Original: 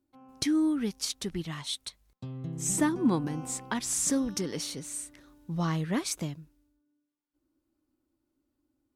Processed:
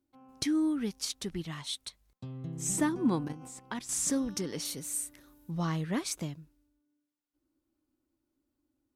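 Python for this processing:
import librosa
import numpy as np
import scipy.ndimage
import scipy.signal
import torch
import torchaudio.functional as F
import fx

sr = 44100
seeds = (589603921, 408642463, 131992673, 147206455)

y = fx.level_steps(x, sr, step_db=11, at=(3.23, 3.92))
y = fx.peak_eq(y, sr, hz=13000.0, db=13.5, octaves=0.78, at=(4.65, 5.51))
y = y * 10.0 ** (-2.5 / 20.0)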